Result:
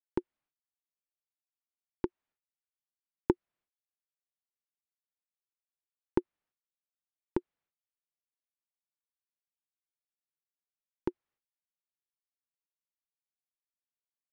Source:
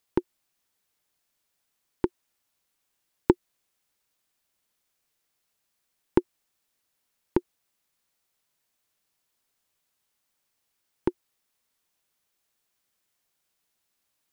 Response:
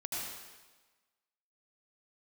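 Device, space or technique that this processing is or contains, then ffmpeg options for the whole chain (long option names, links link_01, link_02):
hearing-loss simulation: -af "lowpass=2300,agate=range=-33dB:threshold=-58dB:ratio=3:detection=peak,volume=-7dB"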